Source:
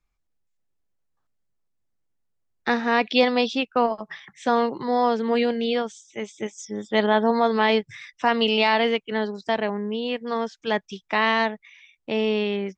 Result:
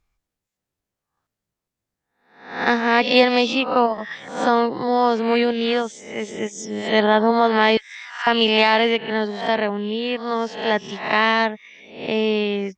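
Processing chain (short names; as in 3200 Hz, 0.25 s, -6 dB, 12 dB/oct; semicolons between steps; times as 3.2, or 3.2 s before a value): spectral swells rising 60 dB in 0.56 s; 7.77–8.27 Chebyshev high-pass 1400 Hz, order 3; added harmonics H 3 -31 dB, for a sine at -4.5 dBFS; gain +3.5 dB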